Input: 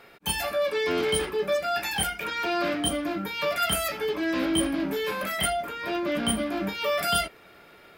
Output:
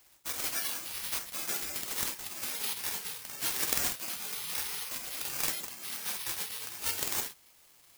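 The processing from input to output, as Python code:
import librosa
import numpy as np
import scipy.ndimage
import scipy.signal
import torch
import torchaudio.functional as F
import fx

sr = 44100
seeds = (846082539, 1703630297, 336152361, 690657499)

y = fx.highpass(x, sr, hz=490.0, slope=6)
y = fx.peak_eq(y, sr, hz=620.0, db=10.5, octaves=0.23)
y = fx.doubler(y, sr, ms=47.0, db=-6.5)
y = fx.spec_gate(y, sr, threshold_db=-25, keep='weak')
y = (np.kron(y[::6], np.eye(6)[0]) * 6)[:len(y)]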